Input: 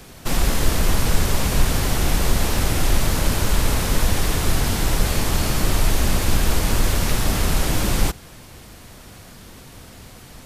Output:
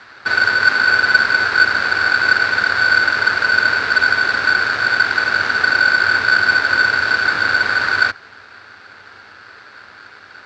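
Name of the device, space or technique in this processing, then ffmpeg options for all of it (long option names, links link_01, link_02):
ring modulator pedal into a guitar cabinet: -af "aeval=exprs='val(0)*sgn(sin(2*PI*1500*n/s))':channel_layout=same,highpass=80,equalizer=frequency=100:width_type=q:width=4:gain=8,equalizer=frequency=160:width_type=q:width=4:gain=-8,equalizer=frequency=420:width_type=q:width=4:gain=3,equalizer=frequency=3100:width_type=q:width=4:gain=-6,lowpass=frequency=4200:width=0.5412,lowpass=frequency=4200:width=1.3066,volume=2.5dB"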